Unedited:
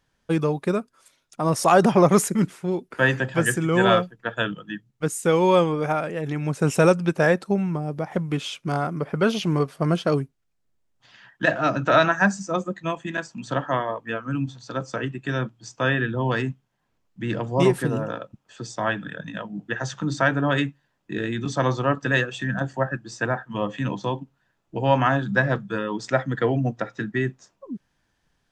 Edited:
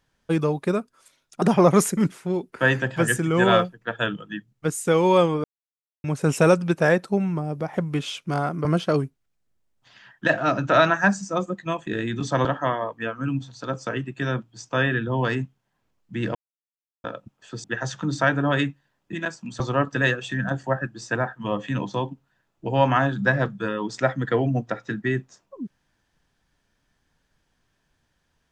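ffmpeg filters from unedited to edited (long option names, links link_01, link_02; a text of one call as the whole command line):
ffmpeg -i in.wav -filter_complex "[0:a]asplit=12[link_01][link_02][link_03][link_04][link_05][link_06][link_07][link_08][link_09][link_10][link_11][link_12];[link_01]atrim=end=1.422[link_13];[link_02]atrim=start=1.798:end=5.82,asetpts=PTS-STARTPTS,afade=type=out:start_time=4.018:duration=0.004:curve=hsin[link_14];[link_03]atrim=start=5.82:end=6.42,asetpts=PTS-STARTPTS,volume=0[link_15];[link_04]atrim=start=6.42:end=9.032,asetpts=PTS-STARTPTS,afade=type=in:duration=0.004:curve=hsin[link_16];[link_05]atrim=start=9.828:end=13.052[link_17];[link_06]atrim=start=21.118:end=21.702[link_18];[link_07]atrim=start=13.518:end=17.42,asetpts=PTS-STARTPTS,afade=type=out:start_time=3.898:duration=0.004:curve=hsin[link_19];[link_08]atrim=start=17.42:end=18.11,asetpts=PTS-STARTPTS,volume=0[link_20];[link_09]atrim=start=18.11:end=18.712,asetpts=PTS-STARTPTS,afade=type=in:duration=0.004:curve=hsin[link_21];[link_10]atrim=start=19.628:end=21.122[link_22];[link_11]atrim=start=13.048:end=13.522[link_23];[link_12]atrim=start=21.698[link_24];[link_14][link_15][link_16]concat=n=3:v=0:a=1[link_25];[link_13][link_25]acrossfade=duration=0.004:curve1=hsin:curve2=hsin[link_26];[link_26][link_17]acrossfade=duration=0.004:curve1=hsin:curve2=hsin[link_27];[link_27][link_18]acrossfade=duration=0.004:curve1=hsin:curve2=hsin[link_28];[link_19][link_20][link_21]concat=n=3:v=0:a=1[link_29];[link_28][link_29]acrossfade=duration=0.004:curve1=hsin:curve2=hsin[link_30];[link_30][link_22]acrossfade=duration=0.004:curve1=hsin:curve2=hsin[link_31];[link_31][link_23]acrossfade=duration=0.004:curve1=hsin:curve2=hsin[link_32];[link_32][link_24]acrossfade=duration=0.004:curve1=hsin:curve2=hsin" out.wav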